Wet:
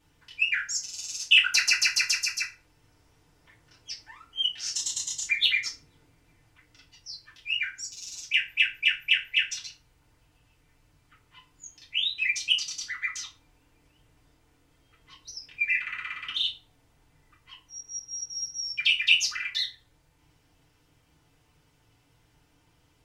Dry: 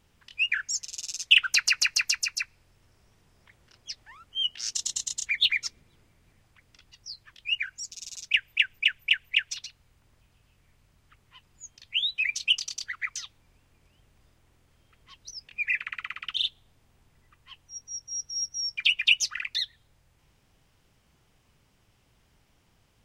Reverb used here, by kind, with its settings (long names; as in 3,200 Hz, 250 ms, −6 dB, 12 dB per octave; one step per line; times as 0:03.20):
feedback delay network reverb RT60 0.33 s, low-frequency decay 0.95×, high-frequency decay 0.8×, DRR −5 dB
level −5 dB